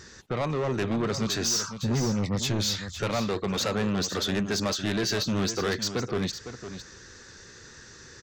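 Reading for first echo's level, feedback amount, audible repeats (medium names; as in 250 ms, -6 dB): -10.5 dB, no regular repeats, 1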